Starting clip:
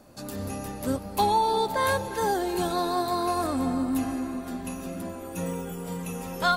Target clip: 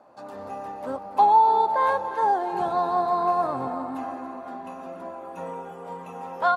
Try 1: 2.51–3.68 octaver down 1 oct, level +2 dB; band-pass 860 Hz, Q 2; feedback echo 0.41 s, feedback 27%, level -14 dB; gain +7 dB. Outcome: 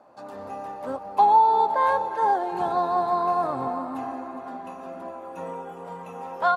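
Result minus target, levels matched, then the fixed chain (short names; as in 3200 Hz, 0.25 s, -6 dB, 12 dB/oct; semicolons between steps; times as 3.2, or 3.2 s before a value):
echo 0.126 s late
2.51–3.68 octaver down 1 oct, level +2 dB; band-pass 860 Hz, Q 2; feedback echo 0.284 s, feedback 27%, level -14 dB; gain +7 dB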